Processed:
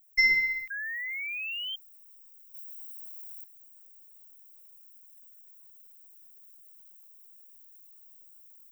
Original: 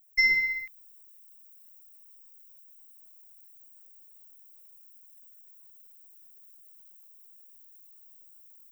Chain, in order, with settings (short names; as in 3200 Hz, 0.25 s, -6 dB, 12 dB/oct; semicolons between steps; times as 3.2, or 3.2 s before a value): 0.7–1.76 painted sound rise 1600–3200 Hz -35 dBFS; 2.54–3.44 high shelf 6100 Hz +10.5 dB